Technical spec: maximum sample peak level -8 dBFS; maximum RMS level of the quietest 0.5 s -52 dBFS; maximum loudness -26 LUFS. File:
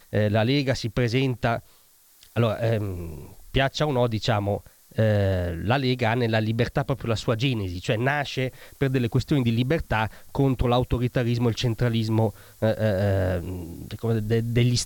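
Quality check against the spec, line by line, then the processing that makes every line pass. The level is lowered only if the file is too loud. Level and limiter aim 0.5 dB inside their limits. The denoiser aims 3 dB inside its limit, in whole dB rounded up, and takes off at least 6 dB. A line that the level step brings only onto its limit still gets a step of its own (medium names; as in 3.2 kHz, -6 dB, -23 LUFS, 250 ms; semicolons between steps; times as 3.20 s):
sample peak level -9.0 dBFS: pass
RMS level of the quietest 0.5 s -56 dBFS: pass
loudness -24.5 LUFS: fail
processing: trim -2 dB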